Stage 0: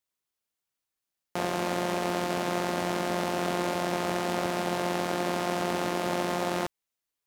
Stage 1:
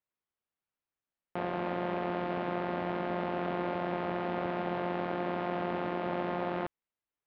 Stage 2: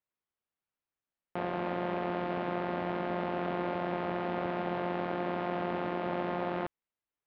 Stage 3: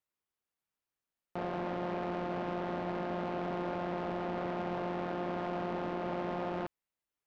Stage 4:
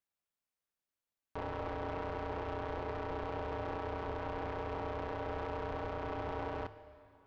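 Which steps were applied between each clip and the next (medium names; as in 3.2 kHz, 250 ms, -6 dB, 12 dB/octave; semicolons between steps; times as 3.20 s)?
Bessel low-pass 2.1 kHz, order 6; in parallel at -0.5 dB: peak limiter -23 dBFS, peak gain reduction 8 dB; on the sum: trim -7.5 dB
no audible change
saturation -27.5 dBFS, distortion -13 dB
ring modulator 250 Hz; plate-style reverb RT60 2.7 s, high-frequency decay 0.95×, DRR 13 dB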